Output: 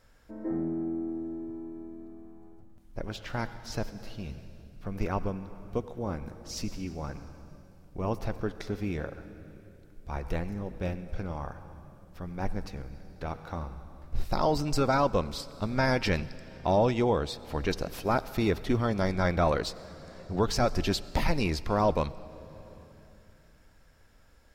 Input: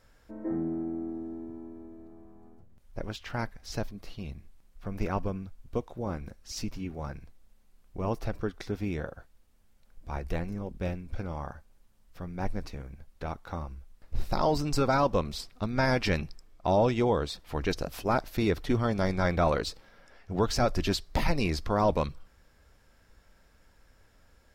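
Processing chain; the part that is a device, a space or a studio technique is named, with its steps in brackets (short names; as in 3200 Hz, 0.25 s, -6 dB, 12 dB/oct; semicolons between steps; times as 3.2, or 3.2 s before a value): compressed reverb return (on a send at -9 dB: reverb RT60 2.3 s, pre-delay 81 ms + compressor 6:1, threshold -33 dBFS, peak gain reduction 13 dB)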